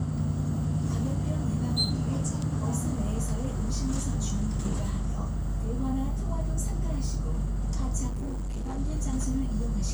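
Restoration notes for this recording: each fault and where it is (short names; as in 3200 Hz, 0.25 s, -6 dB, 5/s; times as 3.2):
8.07–8.79 clipped -29.5 dBFS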